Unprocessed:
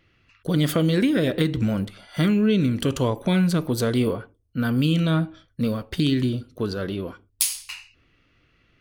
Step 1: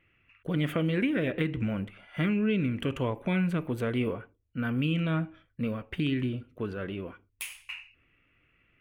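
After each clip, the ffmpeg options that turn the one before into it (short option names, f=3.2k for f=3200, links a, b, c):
-af "highshelf=f=3.4k:t=q:w=3:g=-10.5,volume=-7.5dB"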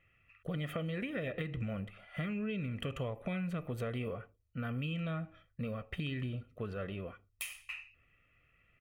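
-af "aecho=1:1:1.6:0.56,acompressor=threshold=-30dB:ratio=6,volume=-4dB"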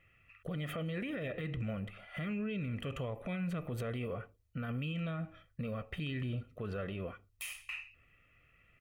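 -af "alimiter=level_in=10dB:limit=-24dB:level=0:latency=1:release=34,volume=-10dB,volume=3dB"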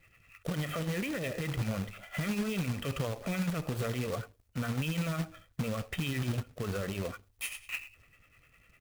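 -filter_complex "[0:a]acrossover=split=400[a][b];[a]aeval=exprs='val(0)*(1-0.7/2+0.7/2*cos(2*PI*10*n/s))':c=same[c];[b]aeval=exprs='val(0)*(1-0.7/2-0.7/2*cos(2*PI*10*n/s))':c=same[d];[c][d]amix=inputs=2:normalize=0,acrusher=bits=2:mode=log:mix=0:aa=0.000001,volume=7dB"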